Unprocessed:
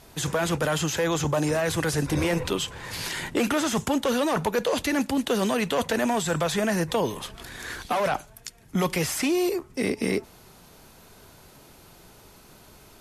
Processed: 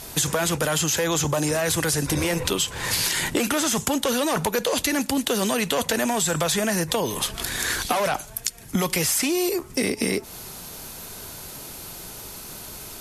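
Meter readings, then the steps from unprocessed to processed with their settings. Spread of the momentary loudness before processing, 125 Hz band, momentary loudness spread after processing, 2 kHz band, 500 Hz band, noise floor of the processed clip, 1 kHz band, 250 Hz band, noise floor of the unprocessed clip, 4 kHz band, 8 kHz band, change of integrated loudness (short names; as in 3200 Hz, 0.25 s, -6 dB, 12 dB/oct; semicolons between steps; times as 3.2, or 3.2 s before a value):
7 LU, +0.5 dB, 14 LU, +3.0 dB, +0.5 dB, -41 dBFS, +1.0 dB, +0.5 dB, -52 dBFS, +6.0 dB, +9.0 dB, +3.0 dB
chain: high shelf 4300 Hz +11 dB; compressor 6:1, threshold -29 dBFS, peak gain reduction 10 dB; gain +8.5 dB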